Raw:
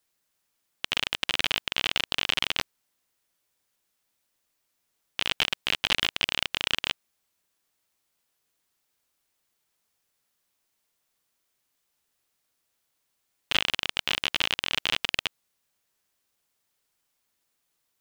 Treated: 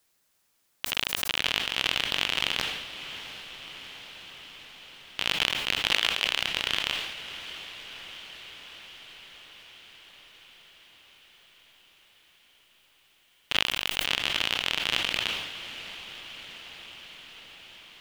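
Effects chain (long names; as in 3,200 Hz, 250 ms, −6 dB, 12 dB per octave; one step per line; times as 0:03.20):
one scale factor per block 7 bits
0:05.92–0:06.41: high-pass filter 400 Hz
brickwall limiter −15 dBFS, peak gain reduction 12 dB
feedback delay with all-pass diffusion 722 ms, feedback 69%, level −11.5 dB
level that may fall only so fast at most 48 dB per second
level +6 dB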